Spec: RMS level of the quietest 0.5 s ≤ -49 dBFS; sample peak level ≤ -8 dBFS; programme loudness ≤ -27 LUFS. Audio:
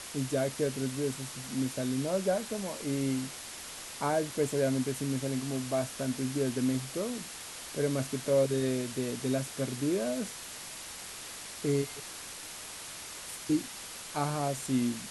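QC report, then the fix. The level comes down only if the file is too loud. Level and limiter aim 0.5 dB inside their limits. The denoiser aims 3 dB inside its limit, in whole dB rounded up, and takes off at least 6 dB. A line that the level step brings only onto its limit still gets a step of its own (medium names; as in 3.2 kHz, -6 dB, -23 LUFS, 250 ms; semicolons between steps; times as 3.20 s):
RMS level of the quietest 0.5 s -44 dBFS: fail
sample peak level -17.0 dBFS: pass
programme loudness -33.0 LUFS: pass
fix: noise reduction 8 dB, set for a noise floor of -44 dBFS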